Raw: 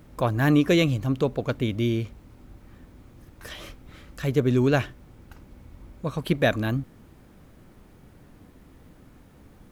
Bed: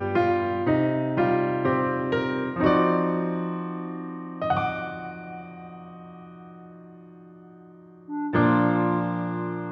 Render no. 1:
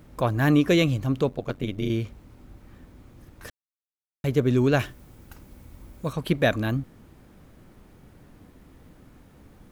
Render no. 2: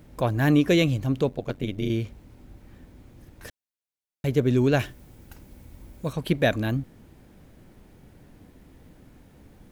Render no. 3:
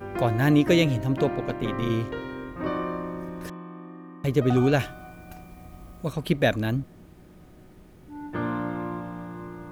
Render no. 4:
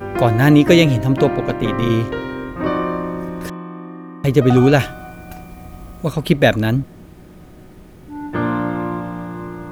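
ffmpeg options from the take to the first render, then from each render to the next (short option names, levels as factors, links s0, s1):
-filter_complex "[0:a]asettb=1/sr,asplit=3[s0][s1][s2];[s0]atrim=end=1.294[s3];[s1]atrim=start=1.29:end=1.9,asetpts=PTS-STARTPTS,afade=t=in:d=0.004:c=qsin,afade=t=out:st=0.606:d=0.004:c=qsin,tremolo=f=92:d=0.824[s4];[s2]atrim=start=1.896[s5];[s3][s4]acrossfade=d=0.004:c1=hsin:c2=qsin[s6];[s6][s5]acrossfade=d=0.004:c1=qsin:c2=hsin,asettb=1/sr,asplit=3[s7][s8][s9];[s7]atrim=end=4.794[s10];[s8]atrim=start=4.79:end=6.13,asetpts=PTS-STARTPTS,afade=t=in:d=0.004:c=qsin,afade=t=out:st=1.336:d=0.004:c=qsin,highshelf=f=6500:g=11.5[s11];[s9]atrim=start=6.126[s12];[s10][s11]acrossfade=d=0.004:c1=hsin:c2=qsin[s13];[s13][s12]acrossfade=d=0.004:c1=qsin:c2=hsin,asplit=3[s14][s15][s16];[s14]atrim=end=3.5,asetpts=PTS-STARTPTS,afade=t=out:st=3.496:d=0.004:c=hsin[s17];[s15]atrim=start=3.5:end=4.24,asetpts=PTS-STARTPTS,volume=0[s18];[s16]atrim=start=4.24,asetpts=PTS-STARTPTS,afade=t=in:d=0.004:c=hsin[s19];[s17][s18][s19]concat=n=3:v=0:a=1"
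-af "equalizer=f=1200:t=o:w=0.45:g=-5.5"
-filter_complex "[1:a]volume=0.355[s0];[0:a][s0]amix=inputs=2:normalize=0"
-af "volume=2.82,alimiter=limit=0.891:level=0:latency=1"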